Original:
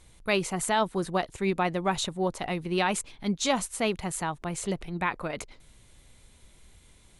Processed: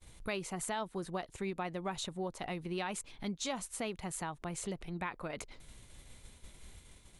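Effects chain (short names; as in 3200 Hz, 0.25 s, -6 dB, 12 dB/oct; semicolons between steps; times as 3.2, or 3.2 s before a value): expander -50 dBFS; compressor 2.5:1, threshold -47 dBFS, peak gain reduction 17.5 dB; gain +4 dB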